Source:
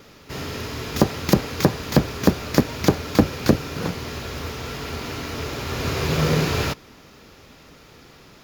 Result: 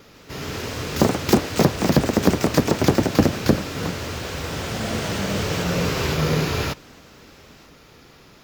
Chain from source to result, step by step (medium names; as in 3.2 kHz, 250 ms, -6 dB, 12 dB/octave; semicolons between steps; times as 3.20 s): ever faster or slower copies 143 ms, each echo +2 st, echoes 3; trim -1 dB